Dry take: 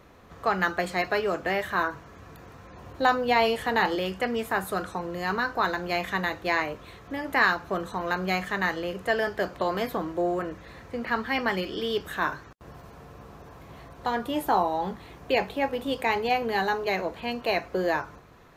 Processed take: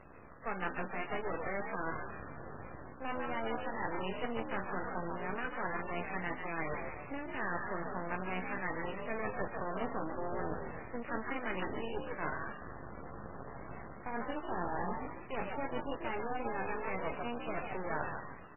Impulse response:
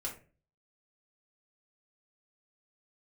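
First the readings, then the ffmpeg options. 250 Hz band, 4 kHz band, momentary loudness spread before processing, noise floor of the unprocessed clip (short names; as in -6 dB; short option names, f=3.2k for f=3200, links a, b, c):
-9.5 dB, -18.5 dB, 18 LU, -49 dBFS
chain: -filter_complex "[0:a]areverse,acompressor=threshold=-35dB:ratio=5,areverse,asplit=6[a][b][c][d][e][f];[b]adelay=145,afreqshift=69,volume=-4dB[g];[c]adelay=290,afreqshift=138,volume=-11.7dB[h];[d]adelay=435,afreqshift=207,volume=-19.5dB[i];[e]adelay=580,afreqshift=276,volume=-27.2dB[j];[f]adelay=725,afreqshift=345,volume=-35dB[k];[a][g][h][i][j][k]amix=inputs=6:normalize=0,aeval=exprs='max(val(0),0)':c=same,volume=2.5dB" -ar 12000 -c:a libmp3lame -b:a 8k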